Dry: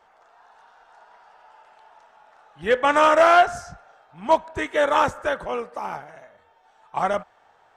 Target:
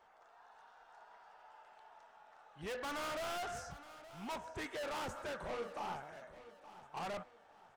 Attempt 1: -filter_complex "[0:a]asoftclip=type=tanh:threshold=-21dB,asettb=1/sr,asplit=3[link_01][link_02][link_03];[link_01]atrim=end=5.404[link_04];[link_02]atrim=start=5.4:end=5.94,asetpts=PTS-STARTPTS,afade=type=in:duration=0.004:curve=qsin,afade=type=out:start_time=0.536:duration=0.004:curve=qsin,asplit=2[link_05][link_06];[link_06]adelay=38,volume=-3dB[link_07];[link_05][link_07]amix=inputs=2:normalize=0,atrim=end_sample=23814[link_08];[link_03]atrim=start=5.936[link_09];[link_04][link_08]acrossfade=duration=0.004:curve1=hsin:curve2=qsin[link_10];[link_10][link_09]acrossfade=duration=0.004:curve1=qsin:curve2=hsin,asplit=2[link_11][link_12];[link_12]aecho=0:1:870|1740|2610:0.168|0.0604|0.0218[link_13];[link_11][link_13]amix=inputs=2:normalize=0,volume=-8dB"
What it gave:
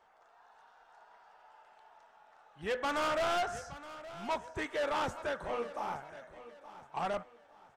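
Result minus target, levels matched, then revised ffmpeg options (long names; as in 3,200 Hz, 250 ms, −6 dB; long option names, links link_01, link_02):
soft clipping: distortion −5 dB
-filter_complex "[0:a]asoftclip=type=tanh:threshold=-31.5dB,asettb=1/sr,asplit=3[link_01][link_02][link_03];[link_01]atrim=end=5.404[link_04];[link_02]atrim=start=5.4:end=5.94,asetpts=PTS-STARTPTS,afade=type=in:duration=0.004:curve=qsin,afade=type=out:start_time=0.536:duration=0.004:curve=qsin,asplit=2[link_05][link_06];[link_06]adelay=38,volume=-3dB[link_07];[link_05][link_07]amix=inputs=2:normalize=0,atrim=end_sample=23814[link_08];[link_03]atrim=start=5.936[link_09];[link_04][link_08]acrossfade=duration=0.004:curve1=hsin:curve2=qsin[link_10];[link_10][link_09]acrossfade=duration=0.004:curve1=qsin:curve2=hsin,asplit=2[link_11][link_12];[link_12]aecho=0:1:870|1740|2610:0.168|0.0604|0.0218[link_13];[link_11][link_13]amix=inputs=2:normalize=0,volume=-8dB"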